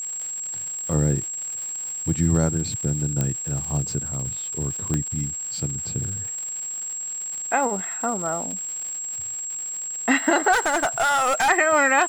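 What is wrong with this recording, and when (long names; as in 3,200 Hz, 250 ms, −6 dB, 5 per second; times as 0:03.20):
surface crackle 290 per second −32 dBFS
whistle 7,600 Hz −28 dBFS
0:03.21: click −10 dBFS
0:04.94: click −12 dBFS
0:10.52–0:11.50: clipping −17 dBFS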